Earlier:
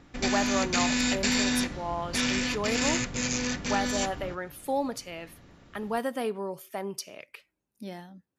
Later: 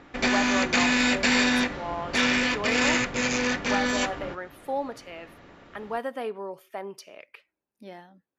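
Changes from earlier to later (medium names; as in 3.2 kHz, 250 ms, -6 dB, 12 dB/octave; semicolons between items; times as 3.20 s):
background +8.5 dB; master: add tone controls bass -11 dB, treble -12 dB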